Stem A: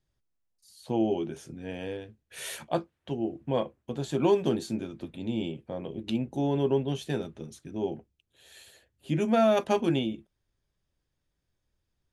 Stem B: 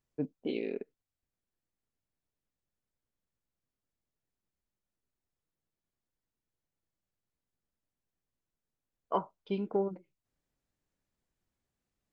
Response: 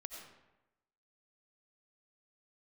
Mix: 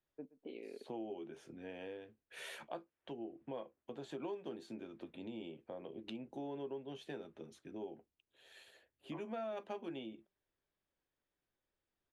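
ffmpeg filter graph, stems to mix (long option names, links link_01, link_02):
-filter_complex "[0:a]volume=-4.5dB,asplit=2[link_01][link_02];[1:a]volume=-9.5dB,asplit=2[link_03][link_04];[link_04]volume=-21.5dB[link_05];[link_02]apad=whole_len=534861[link_06];[link_03][link_06]sidechaincompress=threshold=-31dB:ratio=8:attack=16:release=390[link_07];[link_05]aecho=0:1:121|242|363|484:1|0.27|0.0729|0.0197[link_08];[link_01][link_07][link_08]amix=inputs=3:normalize=0,acrossover=split=250 3600:gain=0.2 1 0.251[link_09][link_10][link_11];[link_09][link_10][link_11]amix=inputs=3:normalize=0,acompressor=threshold=-45dB:ratio=3"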